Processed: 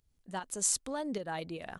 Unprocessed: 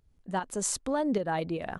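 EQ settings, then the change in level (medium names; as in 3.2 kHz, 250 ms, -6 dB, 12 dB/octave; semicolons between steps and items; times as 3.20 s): treble shelf 2.6 kHz +11.5 dB; -8.5 dB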